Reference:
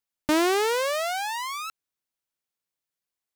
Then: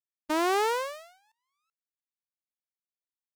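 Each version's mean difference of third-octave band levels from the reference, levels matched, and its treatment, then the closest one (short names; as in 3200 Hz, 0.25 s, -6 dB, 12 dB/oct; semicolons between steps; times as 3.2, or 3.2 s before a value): 9.0 dB: gate -24 dBFS, range -40 dB; dynamic EQ 950 Hz, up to +7 dB, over -39 dBFS, Q 1.1; tremolo saw up 0.76 Hz, depth 90%; gain +1.5 dB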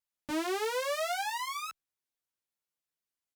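2.5 dB: wow and flutter 27 cents; limiter -22.5 dBFS, peak gain reduction 8 dB; endless flanger 11.1 ms -1.6 Hz; gain -1.5 dB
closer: second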